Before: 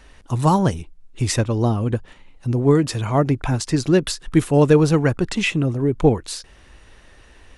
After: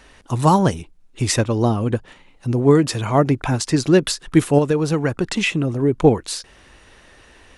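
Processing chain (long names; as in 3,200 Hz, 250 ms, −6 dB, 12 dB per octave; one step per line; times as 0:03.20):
low-shelf EQ 86 Hz −10 dB
0:04.58–0:05.73: downward compressor 4 to 1, threshold −19 dBFS, peak gain reduction 8.5 dB
level +3 dB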